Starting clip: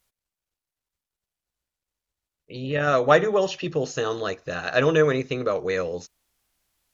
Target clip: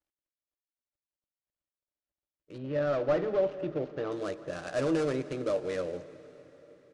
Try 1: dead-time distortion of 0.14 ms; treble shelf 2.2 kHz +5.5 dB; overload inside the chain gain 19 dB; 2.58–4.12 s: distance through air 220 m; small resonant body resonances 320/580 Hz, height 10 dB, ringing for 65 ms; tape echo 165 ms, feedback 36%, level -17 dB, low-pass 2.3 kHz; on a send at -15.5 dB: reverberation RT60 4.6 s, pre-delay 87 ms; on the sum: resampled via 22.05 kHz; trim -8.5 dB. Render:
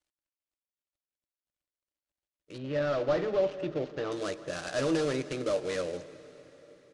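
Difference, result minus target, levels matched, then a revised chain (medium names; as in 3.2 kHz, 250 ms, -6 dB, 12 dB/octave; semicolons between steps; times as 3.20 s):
4 kHz band +6.5 dB
dead-time distortion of 0.14 ms; treble shelf 2.2 kHz -5.5 dB; overload inside the chain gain 19 dB; 2.58–4.12 s: distance through air 220 m; small resonant body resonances 320/580 Hz, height 10 dB, ringing for 65 ms; tape echo 165 ms, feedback 36%, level -17 dB, low-pass 2.3 kHz; on a send at -15.5 dB: reverberation RT60 4.6 s, pre-delay 87 ms; on the sum: resampled via 22.05 kHz; trim -8.5 dB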